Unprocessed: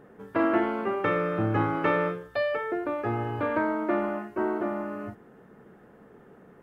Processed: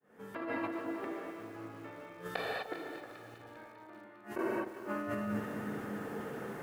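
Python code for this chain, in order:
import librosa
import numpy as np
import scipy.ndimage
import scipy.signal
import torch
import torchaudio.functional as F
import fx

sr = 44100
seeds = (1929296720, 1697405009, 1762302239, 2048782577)

y = fx.fade_in_head(x, sr, length_s=0.87)
y = fx.hum_notches(y, sr, base_hz=60, count=8)
y = fx.gate_flip(y, sr, shuts_db=-23.0, range_db=-37)
y = fx.highpass(y, sr, hz=110.0, slope=6)
y = fx.high_shelf(y, sr, hz=2100.0, db=8.5)
y = fx.echo_alternate(y, sr, ms=100, hz=950.0, feedback_pct=84, wet_db=-13.5)
y = fx.rev_gated(y, sr, seeds[0], gate_ms=280, shape='flat', drr_db=-1.5)
y = fx.over_compress(y, sr, threshold_db=-39.0, ratio=-1.0)
y = fx.peak_eq(y, sr, hz=350.0, db=4.5, octaves=2.7, at=(0.75, 2.22))
y = fx.echo_crushed(y, sr, ms=377, feedback_pct=35, bits=9, wet_db=-14.0)
y = F.gain(torch.from_numpy(y), 4.0).numpy()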